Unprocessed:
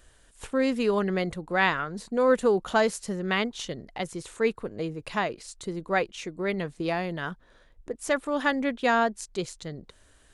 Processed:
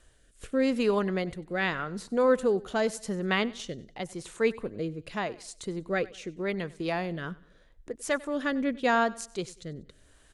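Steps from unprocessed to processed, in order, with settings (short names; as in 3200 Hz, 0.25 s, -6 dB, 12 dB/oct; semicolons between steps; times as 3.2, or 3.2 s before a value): rotary speaker horn 0.85 Hz; feedback echo 96 ms, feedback 39%, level -21 dB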